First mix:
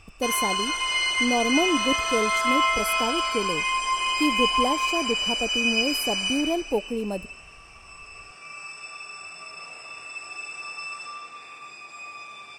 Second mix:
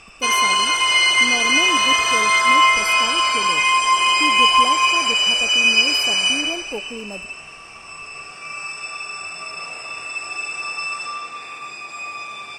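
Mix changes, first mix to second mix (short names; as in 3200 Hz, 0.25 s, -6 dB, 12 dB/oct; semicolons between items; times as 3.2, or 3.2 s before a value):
speech -5.0 dB; first sound +9.0 dB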